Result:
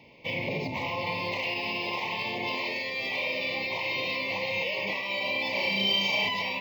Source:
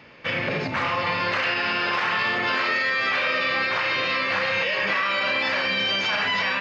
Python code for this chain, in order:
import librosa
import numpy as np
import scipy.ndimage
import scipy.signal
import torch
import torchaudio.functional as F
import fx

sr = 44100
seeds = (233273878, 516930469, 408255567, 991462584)

y = scipy.signal.sosfilt(scipy.signal.ellip(3, 1.0, 60, [1000.0, 2100.0], 'bandstop', fs=sr, output='sos'), x)
y = fx.room_flutter(y, sr, wall_m=6.1, rt60_s=0.77, at=(5.51, 6.29))
y = np.interp(np.arange(len(y)), np.arange(len(y))[::2], y[::2])
y = y * 10.0 ** (-4.0 / 20.0)